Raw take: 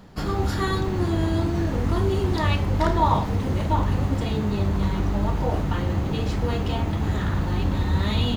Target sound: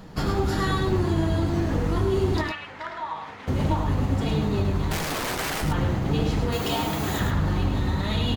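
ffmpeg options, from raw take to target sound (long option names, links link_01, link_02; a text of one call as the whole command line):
ffmpeg -i in.wav -filter_complex "[0:a]asettb=1/sr,asplit=3[link_01][link_02][link_03];[link_01]atrim=end=6.524[link_04];[link_02]atrim=start=6.52:end=7.2,asetpts=PTS-STARTPTS,afade=type=in:duration=0.004:curve=qsin,afade=type=out:start_time=0.676:duration=0.004:curve=qsin,aemphasis=mode=production:type=bsi[link_05];[link_03]atrim=start=7.196[link_06];[link_04][link_05]acrossfade=duration=0.004:curve1=hsin:curve2=qsin[link_07];[link_07][link_06]acrossfade=duration=0.004:curve1=qsin:curve2=hsin,acompressor=threshold=-24dB:ratio=6,asettb=1/sr,asplit=3[link_08][link_09][link_10];[link_08]atrim=end=2.414[link_11];[link_09]atrim=start=2.41:end=3.48,asetpts=PTS-STARTPTS,afade=type=in:duration=0.004:curve=qsin,afade=type=out:start_time=1.066:duration=0.004:curve=qsin,bandpass=frequency=1900:width_type=q:width=1.3:csg=0[link_12];[link_10]atrim=start=3.476[link_13];[link_11][link_12]acrossfade=duration=0.004:curve1=hsin:curve2=qsin[link_14];[link_14][link_13]acrossfade=duration=0.004:curve1=qsin:curve2=hsin,asettb=1/sr,asplit=3[link_15][link_16][link_17];[link_15]atrim=end=4.914[link_18];[link_16]atrim=start=4.91:end=5.62,asetpts=PTS-STARTPTS,afade=type=in:duration=0.004:curve=qsin,afade=type=out:start_time=0.706:duration=0.004:curve=qsin,aeval=exprs='(mod(25.1*val(0)+1,2)-1)/25.1':channel_layout=same[link_19];[link_17]atrim=start=5.616[link_20];[link_18][link_19]acrossfade=duration=0.004:curve1=hsin:curve2=qsin[link_21];[link_21][link_20]acrossfade=duration=0.004:curve1=qsin:curve2=hsin,flanger=delay=6.2:depth=2:regen=58:speed=1.6:shape=sinusoidal,aecho=1:1:75|106:0.15|0.501,volume=8dB" -ar 48000 -c:a aac -b:a 96k out.aac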